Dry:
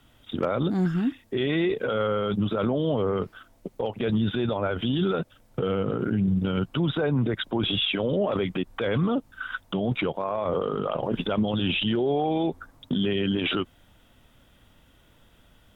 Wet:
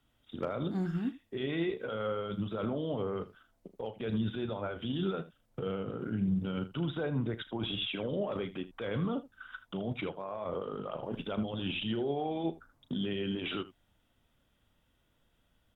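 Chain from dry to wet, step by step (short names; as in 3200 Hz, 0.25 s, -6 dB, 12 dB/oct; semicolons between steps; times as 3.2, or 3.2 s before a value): on a send: early reflections 36 ms -12.5 dB, 79 ms -12 dB; on the sum: upward expander 1.5:1, over -35 dBFS; gain -7.5 dB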